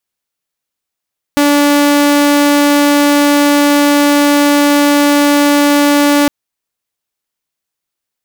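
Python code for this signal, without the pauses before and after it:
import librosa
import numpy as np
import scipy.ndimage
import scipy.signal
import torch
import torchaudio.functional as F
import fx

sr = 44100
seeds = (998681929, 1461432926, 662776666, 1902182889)

y = 10.0 ** (-4.5 / 20.0) * (2.0 * np.mod(289.0 * (np.arange(round(4.91 * sr)) / sr), 1.0) - 1.0)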